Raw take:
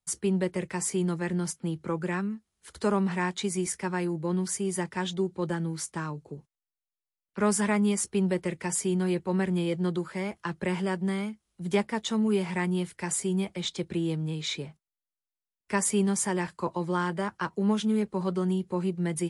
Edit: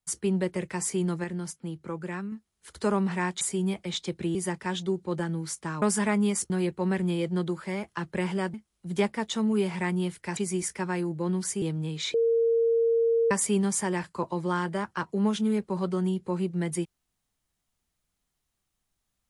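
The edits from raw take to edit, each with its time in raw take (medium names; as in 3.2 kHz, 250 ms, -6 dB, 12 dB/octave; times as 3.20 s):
1.24–2.32 s: gain -4.5 dB
3.41–4.66 s: swap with 13.12–14.06 s
6.13–7.44 s: delete
8.12–8.98 s: delete
11.02–11.29 s: delete
14.58–15.75 s: bleep 460 Hz -20 dBFS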